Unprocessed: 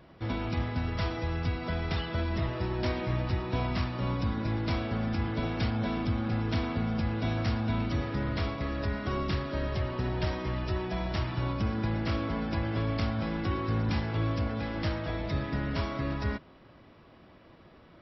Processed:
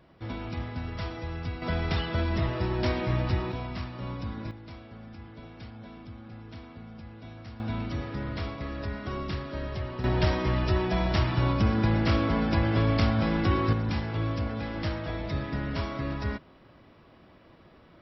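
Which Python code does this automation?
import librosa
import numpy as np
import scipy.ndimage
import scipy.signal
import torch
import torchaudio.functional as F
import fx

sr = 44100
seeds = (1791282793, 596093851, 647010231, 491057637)

y = fx.gain(x, sr, db=fx.steps((0.0, -3.5), (1.62, 3.0), (3.52, -5.0), (4.51, -14.5), (7.6, -2.5), (10.04, 6.0), (13.73, 0.0)))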